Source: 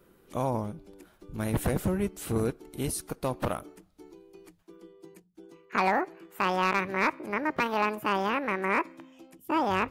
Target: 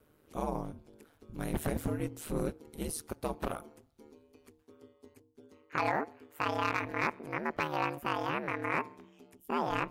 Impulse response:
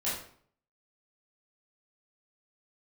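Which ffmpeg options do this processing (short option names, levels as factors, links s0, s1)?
-af "bandreject=f=196:t=h:w=4,bandreject=f=392:t=h:w=4,bandreject=f=588:t=h:w=4,bandreject=f=784:t=h:w=4,bandreject=f=980:t=h:w=4,aeval=exprs='val(0)*sin(2*PI*76*n/s)':c=same,volume=0.75"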